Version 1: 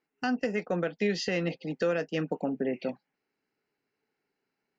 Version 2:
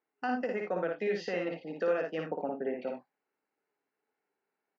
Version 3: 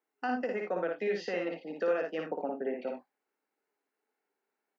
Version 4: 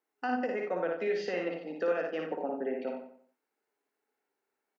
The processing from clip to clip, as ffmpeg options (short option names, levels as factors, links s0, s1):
-af "bandpass=f=840:t=q:w=0.75:csg=0,aecho=1:1:56|80:0.668|0.282,volume=0.891"
-af "highpass=f=190:w=0.5412,highpass=f=190:w=1.3066"
-filter_complex "[0:a]bandreject=f=50:t=h:w=6,bandreject=f=100:t=h:w=6,bandreject=f=150:t=h:w=6,bandreject=f=200:t=h:w=6,asplit=2[s0][s1];[s1]adelay=92,lowpass=f=2700:p=1,volume=0.376,asplit=2[s2][s3];[s3]adelay=92,lowpass=f=2700:p=1,volume=0.35,asplit=2[s4][s5];[s5]adelay=92,lowpass=f=2700:p=1,volume=0.35,asplit=2[s6][s7];[s7]adelay=92,lowpass=f=2700:p=1,volume=0.35[s8];[s2][s4][s6][s8]amix=inputs=4:normalize=0[s9];[s0][s9]amix=inputs=2:normalize=0"